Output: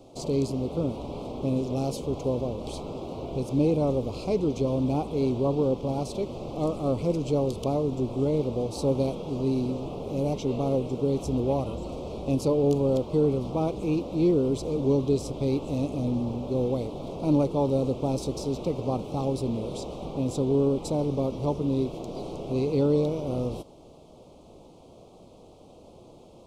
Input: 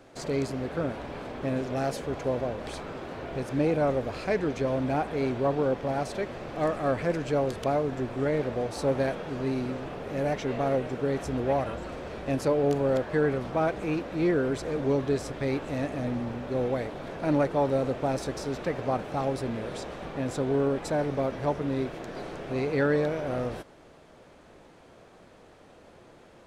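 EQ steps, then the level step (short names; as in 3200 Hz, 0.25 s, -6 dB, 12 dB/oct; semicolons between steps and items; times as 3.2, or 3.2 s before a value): low shelf 500 Hz +3 dB; dynamic EQ 680 Hz, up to -7 dB, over -40 dBFS, Q 2.4; Butterworth band-stop 1700 Hz, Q 0.87; +1.5 dB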